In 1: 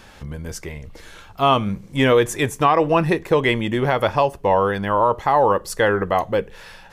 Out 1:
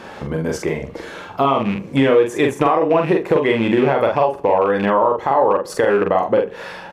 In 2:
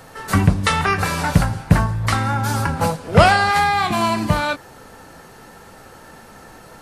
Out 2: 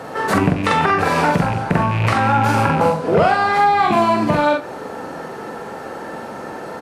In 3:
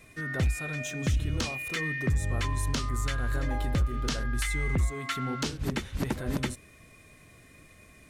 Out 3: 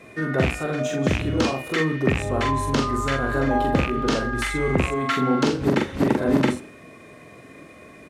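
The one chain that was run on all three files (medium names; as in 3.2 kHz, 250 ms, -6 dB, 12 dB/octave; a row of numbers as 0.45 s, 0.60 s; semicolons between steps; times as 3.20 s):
rattle on loud lows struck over -21 dBFS, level -19 dBFS; high-pass 370 Hz 12 dB/octave; tilt EQ -4 dB/octave; compression 5:1, threshold -25 dBFS; doubling 44 ms -3.5 dB; feedback delay 81 ms, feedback 44%, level -21.5 dB; loudness maximiser +14.5 dB; trim -3.5 dB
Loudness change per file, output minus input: +1.5 LU, +1.5 LU, +8.0 LU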